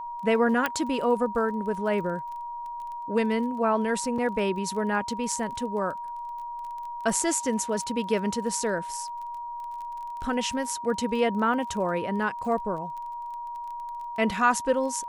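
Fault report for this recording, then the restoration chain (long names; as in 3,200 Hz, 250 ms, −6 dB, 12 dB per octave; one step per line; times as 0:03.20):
surface crackle 24 per second −36 dBFS
whistle 950 Hz −33 dBFS
0:00.66: click −11 dBFS
0:04.18: drop-out 4.1 ms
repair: click removal
notch filter 950 Hz, Q 30
repair the gap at 0:04.18, 4.1 ms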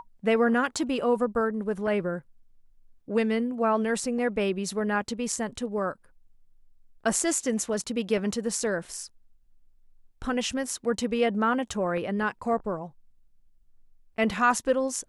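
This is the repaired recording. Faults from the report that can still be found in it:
0:00.66: click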